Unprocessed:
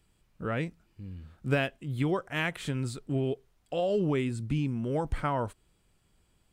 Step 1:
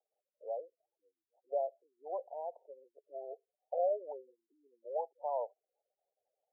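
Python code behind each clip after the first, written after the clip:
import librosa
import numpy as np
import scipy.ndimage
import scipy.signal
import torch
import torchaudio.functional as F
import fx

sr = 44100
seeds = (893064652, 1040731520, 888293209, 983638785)

y = scipy.signal.sosfilt(scipy.signal.butter(8, 830.0, 'lowpass', fs=sr, output='sos'), x)
y = fx.spec_gate(y, sr, threshold_db=-25, keep='strong')
y = scipy.signal.sosfilt(scipy.signal.butter(8, 530.0, 'highpass', fs=sr, output='sos'), y)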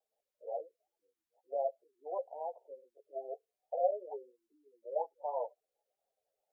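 y = fx.ensemble(x, sr)
y = y * librosa.db_to_amplitude(4.5)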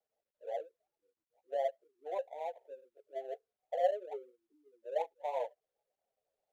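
y = scipy.signal.medfilt(x, 25)
y = y * librosa.db_to_amplitude(1.0)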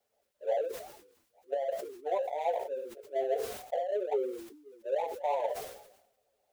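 y = fx.over_compress(x, sr, threshold_db=-38.0, ratio=-1.0)
y = fx.notch_comb(y, sr, f0_hz=160.0)
y = fx.sustainer(y, sr, db_per_s=68.0)
y = y * librosa.db_to_amplitude(8.5)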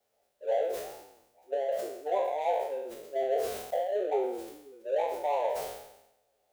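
y = fx.spec_trails(x, sr, decay_s=0.83)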